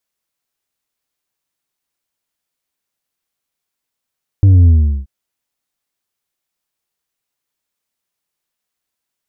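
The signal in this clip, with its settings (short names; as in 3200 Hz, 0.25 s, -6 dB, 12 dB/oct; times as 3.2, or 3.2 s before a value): sub drop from 100 Hz, over 0.63 s, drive 4.5 dB, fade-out 0.39 s, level -5 dB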